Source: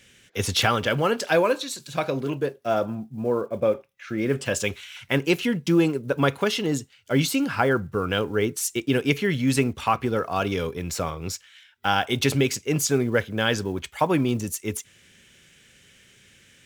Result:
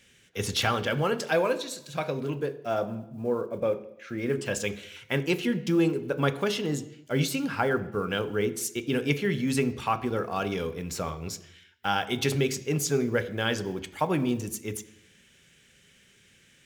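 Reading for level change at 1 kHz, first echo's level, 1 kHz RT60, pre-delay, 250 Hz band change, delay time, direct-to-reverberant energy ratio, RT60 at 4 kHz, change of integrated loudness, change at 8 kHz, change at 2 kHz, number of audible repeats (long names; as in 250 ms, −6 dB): −4.5 dB, no echo audible, 0.85 s, 3 ms, −4.0 dB, no echo audible, 10.0 dB, 0.85 s, −4.0 dB, −5.0 dB, −4.5 dB, no echo audible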